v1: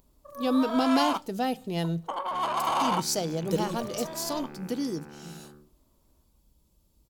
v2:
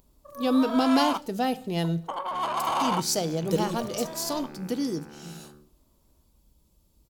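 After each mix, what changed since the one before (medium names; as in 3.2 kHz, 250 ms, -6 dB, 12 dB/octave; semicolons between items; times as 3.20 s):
speech: send +8.0 dB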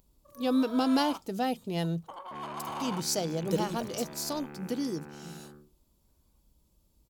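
first sound -11.5 dB; reverb: off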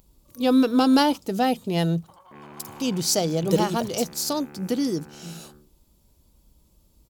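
speech +8.0 dB; first sound -9.0 dB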